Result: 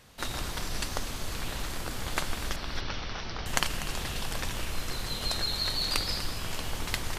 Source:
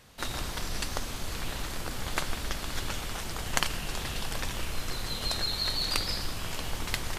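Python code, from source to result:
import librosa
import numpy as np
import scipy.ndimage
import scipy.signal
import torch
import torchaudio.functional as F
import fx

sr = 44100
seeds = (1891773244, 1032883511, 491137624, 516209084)

y = fx.cheby1_lowpass(x, sr, hz=5800.0, order=6, at=(2.56, 3.46))
y = y + 10.0 ** (-13.5 / 20.0) * np.pad(y, (int(245 * sr / 1000.0), 0))[:len(y)]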